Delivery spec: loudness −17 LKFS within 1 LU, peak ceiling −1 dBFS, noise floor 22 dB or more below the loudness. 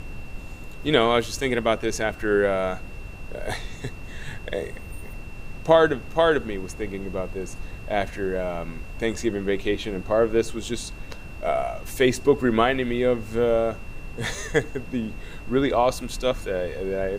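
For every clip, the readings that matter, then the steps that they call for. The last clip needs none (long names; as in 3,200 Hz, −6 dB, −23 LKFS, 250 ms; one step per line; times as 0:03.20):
interfering tone 2,700 Hz; level of the tone −46 dBFS; background noise floor −38 dBFS; target noise floor −47 dBFS; integrated loudness −24.5 LKFS; sample peak −3.0 dBFS; target loudness −17.0 LKFS
→ notch filter 2,700 Hz, Q 30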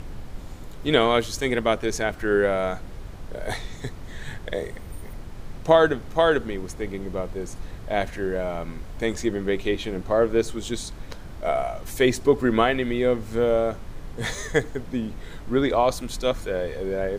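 interfering tone none found; background noise floor −39 dBFS; target noise floor −47 dBFS
→ noise reduction from a noise print 8 dB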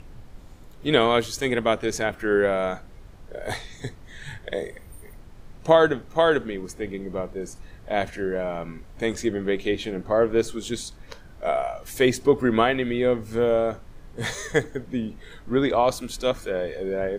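background noise floor −46 dBFS; target noise floor −47 dBFS
→ noise reduction from a noise print 6 dB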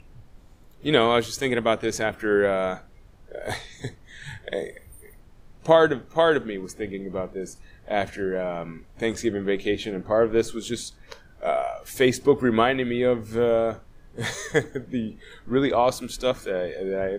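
background noise floor −51 dBFS; integrated loudness −24.5 LKFS; sample peak −3.5 dBFS; target loudness −17.0 LKFS
→ level +7.5 dB
brickwall limiter −1 dBFS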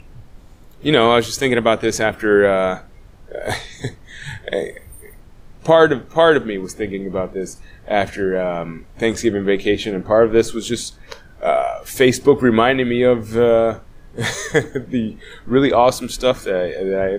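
integrated loudness −17.5 LKFS; sample peak −1.0 dBFS; background noise floor −44 dBFS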